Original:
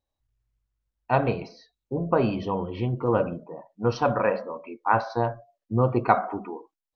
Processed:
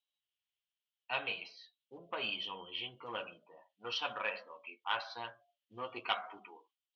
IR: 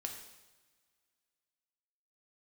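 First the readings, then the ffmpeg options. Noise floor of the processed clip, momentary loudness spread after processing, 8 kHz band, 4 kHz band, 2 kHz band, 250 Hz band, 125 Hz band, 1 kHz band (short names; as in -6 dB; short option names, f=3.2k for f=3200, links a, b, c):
under -85 dBFS, 16 LU, n/a, +7.0 dB, -6.0 dB, -26.5 dB, -33.5 dB, -15.5 dB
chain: -af "acontrast=64,flanger=delay=9.3:depth=2:regen=-32:speed=0.94:shape=sinusoidal,bandpass=f=3.1k:t=q:w=5.5:csg=0,volume=7dB"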